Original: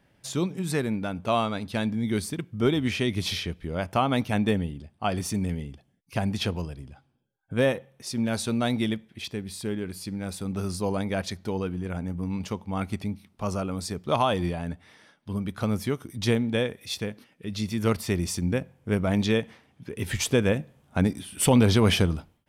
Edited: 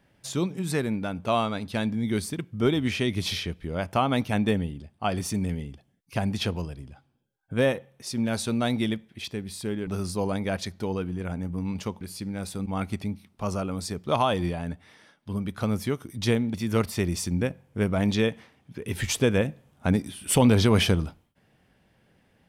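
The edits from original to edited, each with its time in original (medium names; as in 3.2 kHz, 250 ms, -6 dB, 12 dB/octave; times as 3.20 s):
9.87–10.52 s: move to 12.66 s
16.54–17.65 s: delete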